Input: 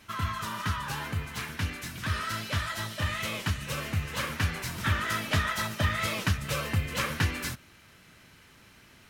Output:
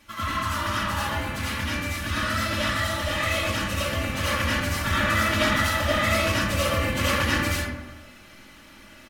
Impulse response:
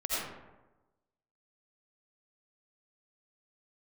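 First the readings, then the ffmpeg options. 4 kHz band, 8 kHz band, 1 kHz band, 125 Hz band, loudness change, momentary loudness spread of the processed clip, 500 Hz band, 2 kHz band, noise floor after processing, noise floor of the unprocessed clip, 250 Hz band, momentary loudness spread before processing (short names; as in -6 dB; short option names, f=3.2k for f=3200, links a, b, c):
+7.0 dB, +6.0 dB, +7.5 dB, +2.5 dB, +6.5 dB, 7 LU, +11.0 dB, +7.5 dB, -48 dBFS, -56 dBFS, +8.0 dB, 6 LU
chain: -filter_complex "[0:a]aecho=1:1:3.5:0.6[a];[1:a]atrim=start_sample=2205[b];[a][b]afir=irnorm=-1:irlink=0"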